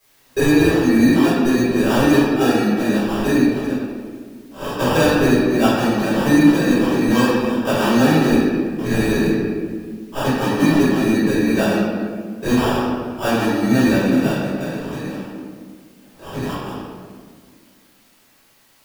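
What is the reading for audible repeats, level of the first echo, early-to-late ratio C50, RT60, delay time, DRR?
no echo audible, no echo audible, −2.0 dB, 1.8 s, no echo audible, −13.0 dB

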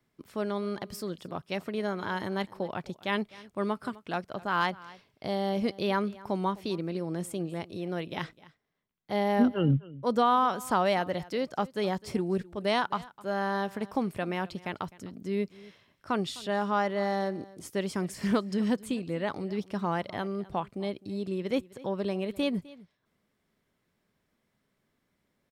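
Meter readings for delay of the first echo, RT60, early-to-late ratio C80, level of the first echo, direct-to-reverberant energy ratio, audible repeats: 256 ms, no reverb audible, no reverb audible, −20.5 dB, no reverb audible, 1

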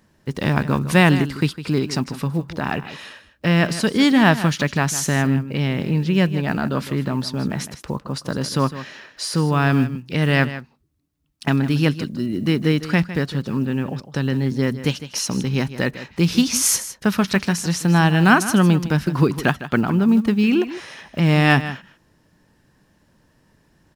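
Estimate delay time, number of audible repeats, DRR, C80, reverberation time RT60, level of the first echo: 156 ms, 1, no reverb audible, no reverb audible, no reverb audible, −13.5 dB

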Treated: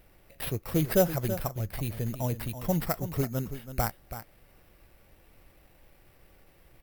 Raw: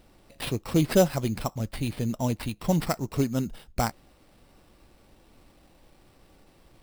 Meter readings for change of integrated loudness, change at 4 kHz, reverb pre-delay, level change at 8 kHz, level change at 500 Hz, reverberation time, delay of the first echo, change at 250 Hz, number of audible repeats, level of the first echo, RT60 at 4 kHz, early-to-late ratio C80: −2.5 dB, −6.0 dB, no reverb audible, −3.5 dB, −2.5 dB, no reverb audible, 329 ms, −5.5 dB, 1, −11.5 dB, no reverb audible, no reverb audible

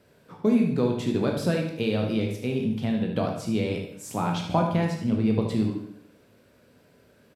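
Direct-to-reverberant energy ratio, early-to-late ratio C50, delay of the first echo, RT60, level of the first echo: 0.5 dB, 4.0 dB, 75 ms, 0.65 s, −8.5 dB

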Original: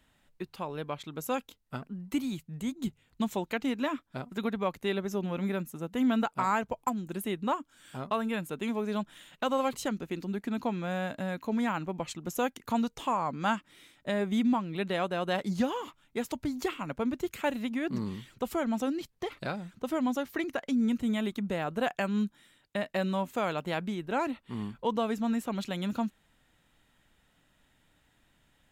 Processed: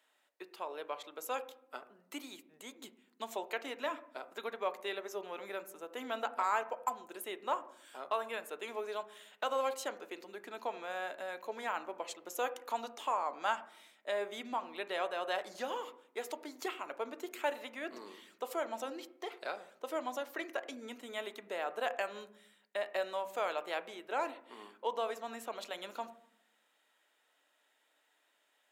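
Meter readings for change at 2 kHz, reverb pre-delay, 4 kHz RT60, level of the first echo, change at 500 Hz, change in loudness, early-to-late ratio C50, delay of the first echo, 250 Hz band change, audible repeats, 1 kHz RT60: −3.5 dB, 3 ms, 0.45 s, no echo audible, −4.5 dB, −7.0 dB, 15.5 dB, no echo audible, −19.5 dB, no echo audible, 0.65 s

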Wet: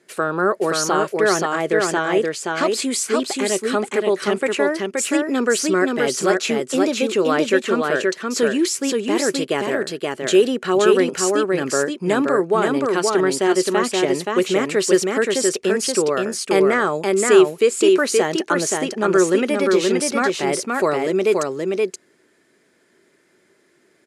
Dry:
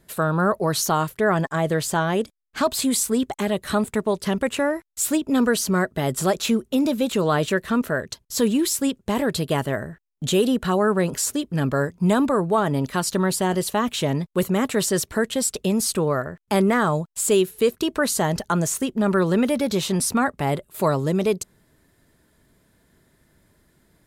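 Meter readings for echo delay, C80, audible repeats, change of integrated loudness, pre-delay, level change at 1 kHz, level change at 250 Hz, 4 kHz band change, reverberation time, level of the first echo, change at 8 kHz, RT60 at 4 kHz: 525 ms, no reverb audible, 1, +3.5 dB, no reverb audible, +2.5 dB, +1.0 dB, +3.5 dB, no reverb audible, −3.0 dB, +2.0 dB, no reverb audible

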